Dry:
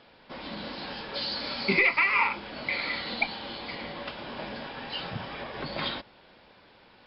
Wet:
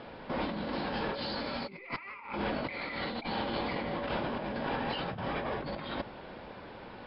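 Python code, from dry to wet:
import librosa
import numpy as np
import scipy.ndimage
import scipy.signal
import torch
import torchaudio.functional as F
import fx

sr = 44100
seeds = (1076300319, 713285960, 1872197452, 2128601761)

y = fx.lowpass(x, sr, hz=1100.0, slope=6)
y = fx.over_compress(y, sr, threshold_db=-44.0, ratio=-1.0)
y = F.gain(torch.from_numpy(y), 6.5).numpy()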